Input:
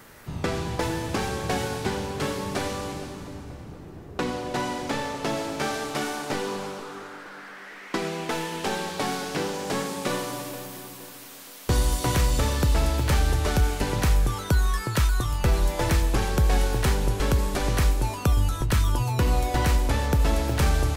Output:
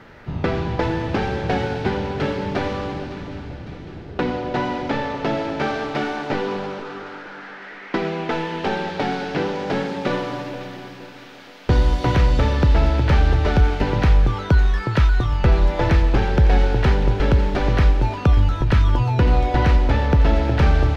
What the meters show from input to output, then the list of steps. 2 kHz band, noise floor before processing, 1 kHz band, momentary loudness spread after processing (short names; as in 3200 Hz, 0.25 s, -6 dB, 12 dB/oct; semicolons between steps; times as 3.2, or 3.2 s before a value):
+4.5 dB, -43 dBFS, +5.0 dB, 15 LU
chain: air absorption 250 m; notch 1100 Hz, Q 11; on a send: thin delay 0.557 s, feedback 66%, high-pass 1500 Hz, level -13 dB; on the sum: gain +6.5 dB